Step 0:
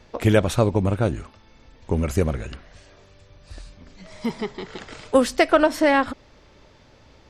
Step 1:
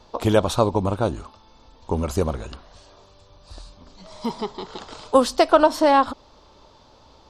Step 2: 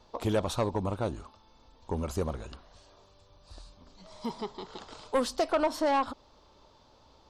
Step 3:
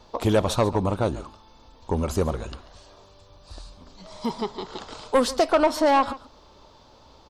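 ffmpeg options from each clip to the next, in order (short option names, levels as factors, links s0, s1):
-af "equalizer=f=125:t=o:w=1:g=-4,equalizer=f=1000:t=o:w=1:g=10,equalizer=f=2000:t=o:w=1:g=-11,equalizer=f=4000:t=o:w=1:g=7,volume=0.891"
-af "asoftclip=type=tanh:threshold=0.282,volume=0.398"
-af "aecho=1:1:140:0.133,volume=2.37"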